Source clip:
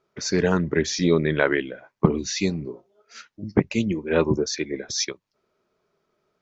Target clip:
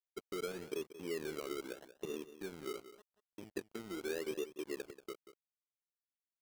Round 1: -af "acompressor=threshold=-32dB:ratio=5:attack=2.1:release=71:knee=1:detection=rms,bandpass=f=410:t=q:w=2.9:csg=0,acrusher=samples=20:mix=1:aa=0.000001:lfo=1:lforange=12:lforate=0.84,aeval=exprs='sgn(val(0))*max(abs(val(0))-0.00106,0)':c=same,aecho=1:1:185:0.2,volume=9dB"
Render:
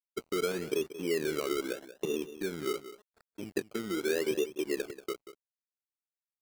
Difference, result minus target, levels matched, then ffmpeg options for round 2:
compressor: peak gain reduction -8.5 dB
-af "acompressor=threshold=-42.5dB:ratio=5:attack=2.1:release=71:knee=1:detection=rms,bandpass=f=410:t=q:w=2.9:csg=0,acrusher=samples=20:mix=1:aa=0.000001:lfo=1:lforange=12:lforate=0.84,aeval=exprs='sgn(val(0))*max(abs(val(0))-0.00106,0)':c=same,aecho=1:1:185:0.2,volume=9dB"

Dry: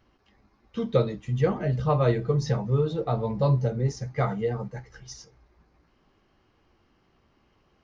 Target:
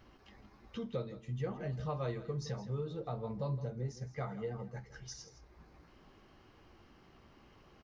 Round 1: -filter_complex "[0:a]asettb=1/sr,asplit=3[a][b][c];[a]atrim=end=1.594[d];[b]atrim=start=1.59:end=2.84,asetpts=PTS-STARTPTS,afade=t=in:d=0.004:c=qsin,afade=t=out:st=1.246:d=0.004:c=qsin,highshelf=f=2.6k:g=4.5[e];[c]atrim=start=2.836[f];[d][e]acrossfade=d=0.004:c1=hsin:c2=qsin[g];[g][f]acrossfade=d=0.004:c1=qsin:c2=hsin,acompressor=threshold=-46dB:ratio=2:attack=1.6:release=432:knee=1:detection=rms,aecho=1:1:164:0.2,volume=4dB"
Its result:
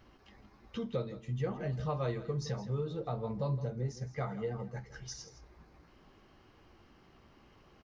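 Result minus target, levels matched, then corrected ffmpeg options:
compressor: peak gain reduction -3 dB
-filter_complex "[0:a]asettb=1/sr,asplit=3[a][b][c];[a]atrim=end=1.594[d];[b]atrim=start=1.59:end=2.84,asetpts=PTS-STARTPTS,afade=t=in:d=0.004:c=qsin,afade=t=out:st=1.246:d=0.004:c=qsin,highshelf=f=2.6k:g=4.5[e];[c]atrim=start=2.836[f];[d][e]acrossfade=d=0.004:c1=hsin:c2=qsin[g];[g][f]acrossfade=d=0.004:c1=qsin:c2=hsin,acompressor=threshold=-52dB:ratio=2:attack=1.6:release=432:knee=1:detection=rms,aecho=1:1:164:0.2,volume=4dB"

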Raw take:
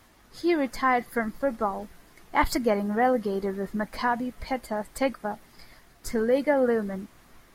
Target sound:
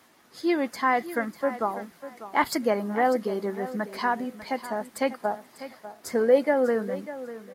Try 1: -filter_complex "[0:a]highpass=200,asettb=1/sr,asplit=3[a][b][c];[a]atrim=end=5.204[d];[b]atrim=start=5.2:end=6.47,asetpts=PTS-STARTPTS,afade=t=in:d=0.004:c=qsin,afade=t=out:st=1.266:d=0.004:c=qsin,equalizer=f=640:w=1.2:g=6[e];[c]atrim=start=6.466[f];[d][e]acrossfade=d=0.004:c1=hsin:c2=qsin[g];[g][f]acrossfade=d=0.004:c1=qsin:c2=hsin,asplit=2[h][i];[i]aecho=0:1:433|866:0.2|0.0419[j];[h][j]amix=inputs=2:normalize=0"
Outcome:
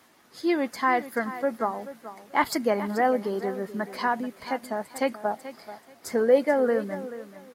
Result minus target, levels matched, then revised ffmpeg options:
echo 0.163 s early
-filter_complex "[0:a]highpass=200,asettb=1/sr,asplit=3[a][b][c];[a]atrim=end=5.204[d];[b]atrim=start=5.2:end=6.47,asetpts=PTS-STARTPTS,afade=t=in:d=0.004:c=qsin,afade=t=out:st=1.266:d=0.004:c=qsin,equalizer=f=640:w=1.2:g=6[e];[c]atrim=start=6.466[f];[d][e]acrossfade=d=0.004:c1=hsin:c2=qsin[g];[g][f]acrossfade=d=0.004:c1=qsin:c2=hsin,asplit=2[h][i];[i]aecho=0:1:596|1192:0.2|0.0419[j];[h][j]amix=inputs=2:normalize=0"

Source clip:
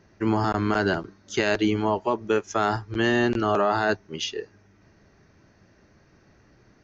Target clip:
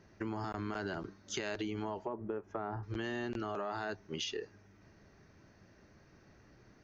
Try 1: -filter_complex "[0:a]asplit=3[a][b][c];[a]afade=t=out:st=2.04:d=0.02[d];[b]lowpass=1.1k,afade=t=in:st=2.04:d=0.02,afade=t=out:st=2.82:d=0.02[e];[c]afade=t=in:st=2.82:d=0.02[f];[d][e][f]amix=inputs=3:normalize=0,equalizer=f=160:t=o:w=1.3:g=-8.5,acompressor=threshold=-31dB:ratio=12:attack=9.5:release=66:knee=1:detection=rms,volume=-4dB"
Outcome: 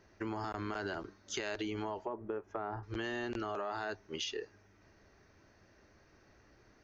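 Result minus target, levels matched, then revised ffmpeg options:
125 Hz band -3.0 dB
-filter_complex "[0:a]asplit=3[a][b][c];[a]afade=t=out:st=2.04:d=0.02[d];[b]lowpass=1.1k,afade=t=in:st=2.04:d=0.02,afade=t=out:st=2.82:d=0.02[e];[c]afade=t=in:st=2.82:d=0.02[f];[d][e][f]amix=inputs=3:normalize=0,acompressor=threshold=-31dB:ratio=12:attack=9.5:release=66:knee=1:detection=rms,volume=-4dB"

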